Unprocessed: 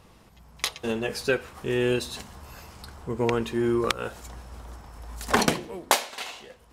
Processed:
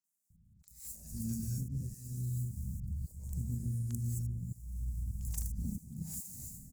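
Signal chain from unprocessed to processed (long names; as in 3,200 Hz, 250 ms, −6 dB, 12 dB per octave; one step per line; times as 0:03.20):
running median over 15 samples
noise gate −50 dBFS, range −13 dB
elliptic band-stop filter 180–7,200 Hz, stop band 40 dB
high-shelf EQ 4,500 Hz +5.5 dB
reverb whose tail is shaped and stops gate 250 ms rising, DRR −1.5 dB
downward compressor 16 to 1, threshold −39 dBFS, peak gain reduction 15.5 dB
harmonic generator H 3 −19 dB, 7 −31 dB, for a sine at −20.5 dBFS
volume swells 349 ms
three-band delay without the direct sound mids, highs, lows 40/300 ms, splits 550/5,800 Hz
level +12.5 dB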